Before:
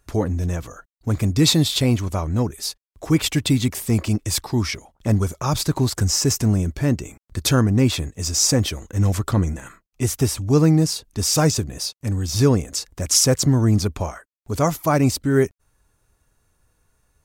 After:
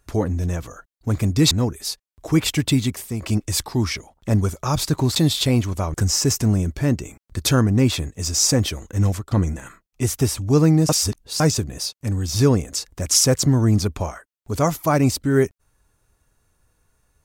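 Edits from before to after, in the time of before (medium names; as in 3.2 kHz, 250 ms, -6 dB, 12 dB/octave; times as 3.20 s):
1.51–2.29 s: move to 5.94 s
3.53–4.00 s: fade out, to -10.5 dB
9.06–9.31 s: fade out, to -23.5 dB
10.89–11.40 s: reverse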